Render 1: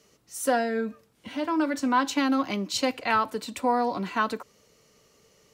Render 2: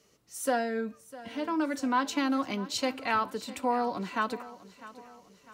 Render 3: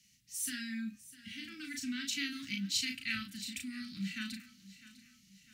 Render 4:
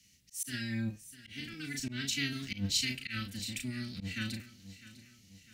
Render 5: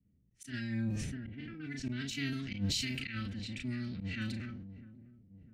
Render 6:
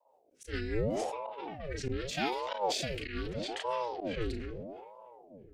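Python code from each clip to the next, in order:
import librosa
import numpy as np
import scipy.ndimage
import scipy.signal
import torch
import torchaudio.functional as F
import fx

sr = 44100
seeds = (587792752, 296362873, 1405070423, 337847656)

y1 = fx.echo_feedback(x, sr, ms=652, feedback_pct=46, wet_db=-17.5)
y1 = y1 * librosa.db_to_amplitude(-4.0)
y2 = scipy.signal.sosfilt(scipy.signal.cheby2(4, 60, [450.0, 970.0], 'bandstop', fs=sr, output='sos'), y1)
y2 = fx.low_shelf(y2, sr, hz=340.0, db=-3.5)
y2 = fx.doubler(y2, sr, ms=36.0, db=-4)
y3 = fx.octave_divider(y2, sr, octaves=1, level_db=-1.0)
y3 = fx.auto_swell(y3, sr, attack_ms=116.0)
y3 = y3 * librosa.db_to_amplitude(2.5)
y4 = fx.env_lowpass(y3, sr, base_hz=450.0, full_db=-32.0)
y4 = fx.high_shelf(y4, sr, hz=2500.0, db=-12.0)
y4 = fx.sustainer(y4, sr, db_per_s=29.0)
y5 = fx.rotary_switch(y4, sr, hz=5.0, then_hz=0.75, switch_at_s=1.4)
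y5 = fx.ring_lfo(y5, sr, carrier_hz=450.0, swing_pct=70, hz=0.8)
y5 = y5 * librosa.db_to_amplitude(7.5)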